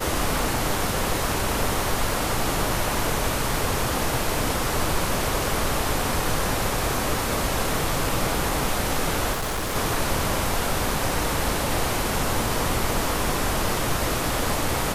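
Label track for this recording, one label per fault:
9.320000	9.760000	clipping −23.5 dBFS

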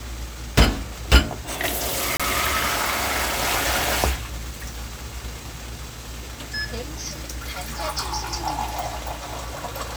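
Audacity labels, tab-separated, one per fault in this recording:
2.170000	2.200000	drop-out 26 ms

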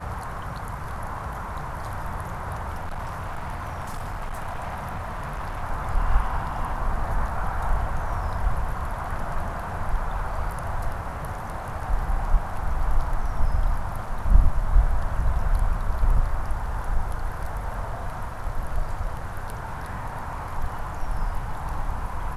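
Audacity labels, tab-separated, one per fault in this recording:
2.750000	5.630000	clipping −27 dBFS
14.060000	14.060000	drop-out 3.6 ms

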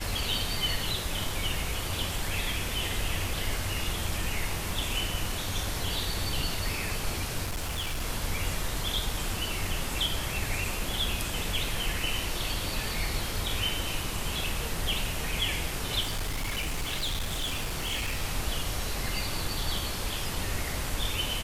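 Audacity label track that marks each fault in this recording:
7.440000	8.020000	clipping −28 dBFS
16.020000	18.230000	clipping −27 dBFS

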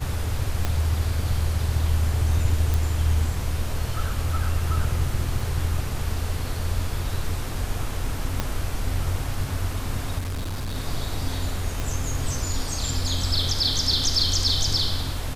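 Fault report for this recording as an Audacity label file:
0.650000	0.650000	click −10 dBFS
2.740000	2.740000	click
5.400000	5.400000	drop-out 3.3 ms
8.400000	8.400000	click −9 dBFS
10.180000	10.770000	clipping −25.5 dBFS
11.800000	11.800000	click

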